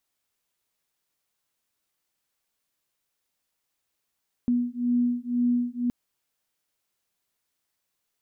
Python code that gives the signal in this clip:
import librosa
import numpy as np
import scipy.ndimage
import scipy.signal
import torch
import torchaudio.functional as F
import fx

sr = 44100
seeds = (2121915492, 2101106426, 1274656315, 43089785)

y = fx.two_tone_beats(sr, length_s=1.42, hz=242.0, beat_hz=2.0, level_db=-25.0)